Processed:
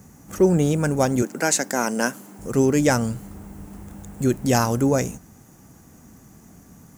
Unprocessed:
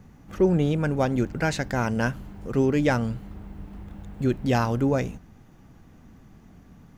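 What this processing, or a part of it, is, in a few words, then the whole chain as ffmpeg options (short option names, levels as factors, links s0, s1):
budget condenser microphone: -filter_complex "[0:a]asettb=1/sr,asplit=3[s0][s1][s2];[s0]atrim=end=1.224[s3];[s1]atrim=start=1.22:end=2.39,asetpts=PTS-STARTPTS,afade=t=in:d=0.004:c=qsin,afade=t=out:st=1.166:d=0.004:c=qsin,highpass=f=210:w=0.5412,highpass=f=210:w=1.3066[s4];[s2]atrim=start=2.386[s5];[s3][s4]acrossfade=d=0.004:c1=hsin:c2=qsin[s6];[s6][s5]acrossfade=d=0.004:c1=qsin:c2=hsin,highpass=f=99:p=1,highshelf=f=5200:t=q:w=1.5:g=13,volume=1.58"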